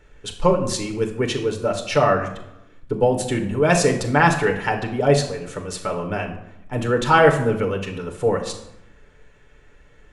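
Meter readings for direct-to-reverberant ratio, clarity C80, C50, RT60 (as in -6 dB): 2.5 dB, 12.0 dB, 9.0 dB, 0.85 s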